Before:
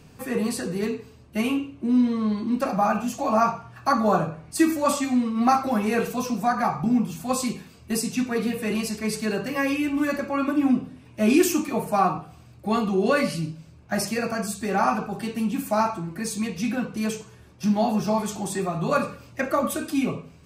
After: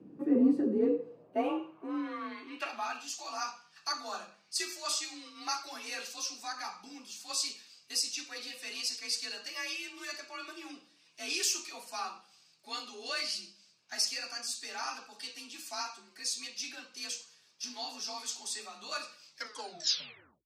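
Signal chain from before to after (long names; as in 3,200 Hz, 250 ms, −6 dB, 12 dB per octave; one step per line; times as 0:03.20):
turntable brake at the end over 1.22 s
band-pass filter sweep 260 Hz → 4,900 Hz, 0:00.68–0:03.11
frequency shifter +40 Hz
level +4.5 dB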